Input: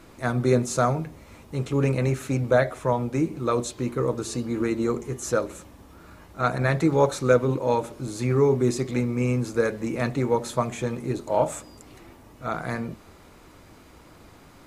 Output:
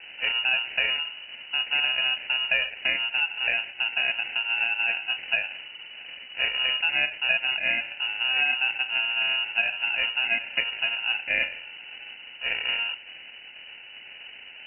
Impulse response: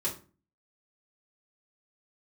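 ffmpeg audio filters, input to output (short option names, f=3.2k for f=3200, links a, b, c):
-filter_complex "[0:a]acrossover=split=540|1900[a][b][c];[a]acompressor=threshold=-32dB:ratio=4[d];[b]acompressor=threshold=-37dB:ratio=4[e];[c]acompressor=threshold=-50dB:ratio=4[f];[d][e][f]amix=inputs=3:normalize=0,acrusher=samples=24:mix=1:aa=0.000001,lowpass=f=2.6k:t=q:w=0.5098,lowpass=f=2.6k:t=q:w=0.6013,lowpass=f=2.6k:t=q:w=0.9,lowpass=f=2.6k:t=q:w=2.563,afreqshift=-3000,volume=6dB"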